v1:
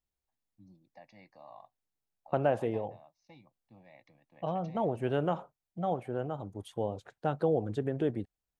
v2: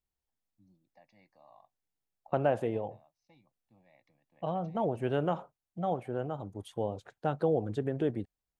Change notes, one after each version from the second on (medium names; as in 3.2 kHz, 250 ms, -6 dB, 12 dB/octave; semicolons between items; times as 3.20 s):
first voice -7.5 dB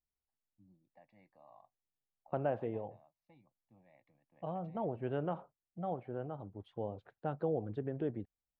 second voice -5.5 dB; master: add distance through air 370 m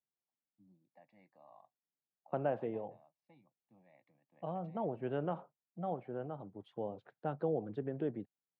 master: add high-pass 130 Hz 24 dB/octave